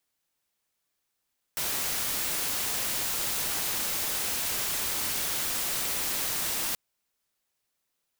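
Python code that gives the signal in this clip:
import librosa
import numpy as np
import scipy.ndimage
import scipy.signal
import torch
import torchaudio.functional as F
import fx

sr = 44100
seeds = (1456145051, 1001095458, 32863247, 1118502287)

y = fx.noise_colour(sr, seeds[0], length_s=5.18, colour='white', level_db=-30.0)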